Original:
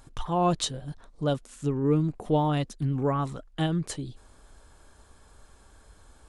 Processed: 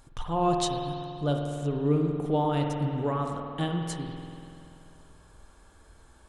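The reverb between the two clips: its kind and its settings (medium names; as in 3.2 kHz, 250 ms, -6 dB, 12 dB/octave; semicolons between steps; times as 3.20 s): spring tank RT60 2.6 s, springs 48 ms, chirp 65 ms, DRR 2 dB; trim -2.5 dB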